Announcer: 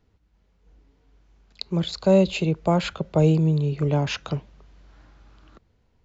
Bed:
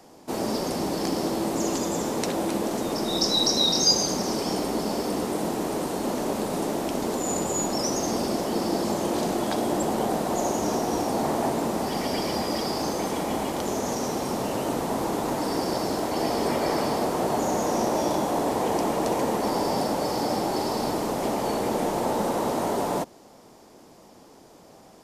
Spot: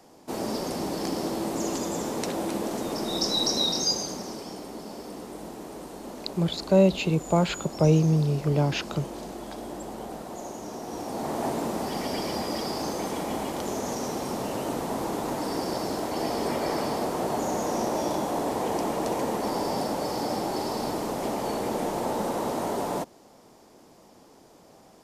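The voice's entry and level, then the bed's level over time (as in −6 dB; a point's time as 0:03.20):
4.65 s, −1.5 dB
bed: 0:03.60 −3 dB
0:04.56 −12 dB
0:10.73 −12 dB
0:11.48 −3 dB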